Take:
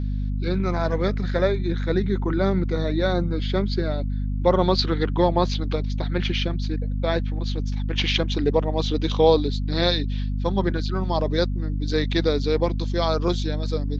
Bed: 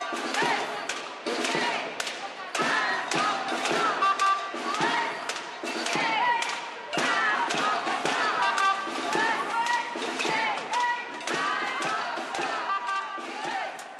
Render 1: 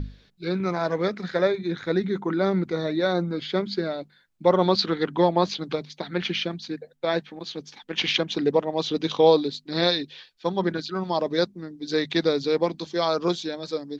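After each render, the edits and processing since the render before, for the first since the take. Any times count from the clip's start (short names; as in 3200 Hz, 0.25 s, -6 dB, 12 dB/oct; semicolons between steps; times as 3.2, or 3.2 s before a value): notches 50/100/150/200/250 Hz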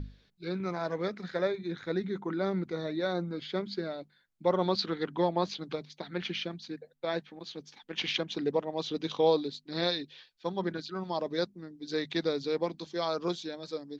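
gain -8 dB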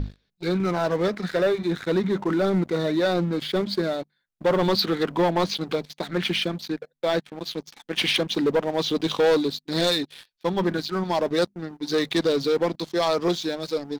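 sample leveller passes 3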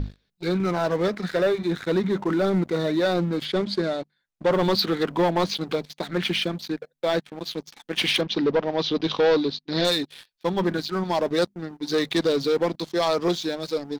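3.45–4.52 LPF 8800 Hz; 8.21–9.85 steep low-pass 5600 Hz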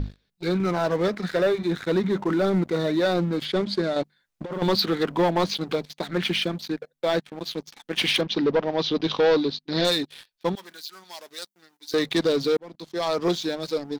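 3.96–4.62 negative-ratio compressor -26 dBFS, ratio -0.5; 10.55–11.94 differentiator; 12.57–13.28 fade in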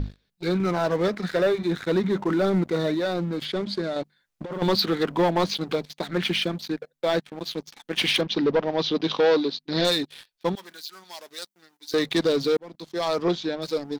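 2.94–4.61 compressor 1.5:1, threshold -29 dBFS; 8.91–9.58 HPF 110 Hz -> 250 Hz; 13.22–13.62 Gaussian blur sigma 1.6 samples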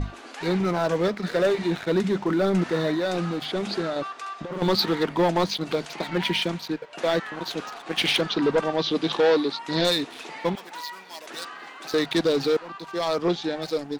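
add bed -12 dB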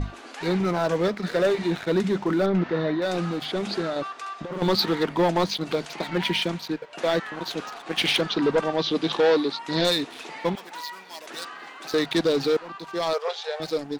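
2.46–3.02 air absorption 210 m; 13.13–13.6 brick-wall FIR high-pass 400 Hz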